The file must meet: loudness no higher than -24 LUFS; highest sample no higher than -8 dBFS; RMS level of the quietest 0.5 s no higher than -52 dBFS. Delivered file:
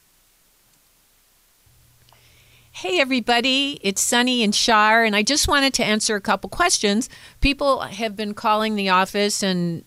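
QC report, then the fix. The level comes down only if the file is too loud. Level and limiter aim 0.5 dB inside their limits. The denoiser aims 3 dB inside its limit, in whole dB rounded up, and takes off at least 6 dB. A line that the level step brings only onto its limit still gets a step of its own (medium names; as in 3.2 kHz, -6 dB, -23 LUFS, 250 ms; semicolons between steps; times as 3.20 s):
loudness -19.0 LUFS: fail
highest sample -6.0 dBFS: fail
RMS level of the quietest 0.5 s -59 dBFS: pass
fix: trim -5.5 dB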